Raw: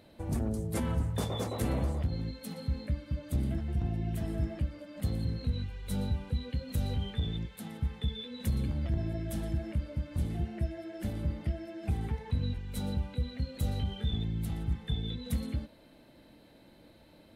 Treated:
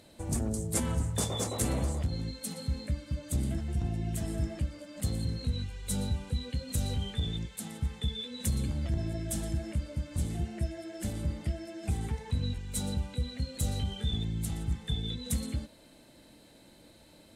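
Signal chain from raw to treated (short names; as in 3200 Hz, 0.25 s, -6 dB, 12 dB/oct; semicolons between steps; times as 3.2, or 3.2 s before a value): bell 7700 Hz +15 dB 1.2 oct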